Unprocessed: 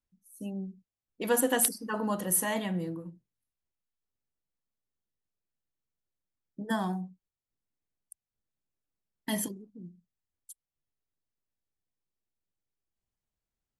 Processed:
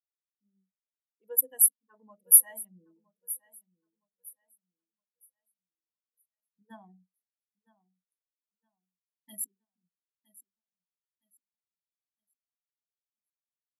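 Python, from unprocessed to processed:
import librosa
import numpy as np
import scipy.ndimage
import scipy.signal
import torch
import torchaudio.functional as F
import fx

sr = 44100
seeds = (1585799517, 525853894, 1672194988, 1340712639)

p1 = fx.wiener(x, sr, points=41)
p2 = np.clip(10.0 ** (28.0 / 20.0) * p1, -1.0, 1.0) / 10.0 ** (28.0 / 20.0)
p3 = p1 + F.gain(torch.from_numpy(p2), -3.0).numpy()
p4 = fx.rider(p3, sr, range_db=3, speed_s=2.0)
p5 = fx.riaa(p4, sr, side='recording')
p6 = p5 + fx.echo_feedback(p5, sr, ms=964, feedback_pct=55, wet_db=-8, dry=0)
p7 = fx.spectral_expand(p6, sr, expansion=2.5)
y = F.gain(torch.from_numpy(p7), -4.5).numpy()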